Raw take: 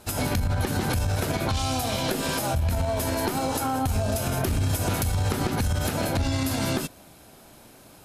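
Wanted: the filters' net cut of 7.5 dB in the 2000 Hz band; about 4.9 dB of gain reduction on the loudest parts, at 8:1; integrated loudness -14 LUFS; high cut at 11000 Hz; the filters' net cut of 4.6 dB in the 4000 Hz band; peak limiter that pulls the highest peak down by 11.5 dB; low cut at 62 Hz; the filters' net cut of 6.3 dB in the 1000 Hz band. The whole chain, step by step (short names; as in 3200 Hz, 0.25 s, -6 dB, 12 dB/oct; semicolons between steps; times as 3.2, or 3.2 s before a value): HPF 62 Hz; LPF 11000 Hz; bell 1000 Hz -7.5 dB; bell 2000 Hz -6.5 dB; bell 4000 Hz -3.5 dB; compressor 8:1, threshold -27 dBFS; gain +25.5 dB; limiter -6 dBFS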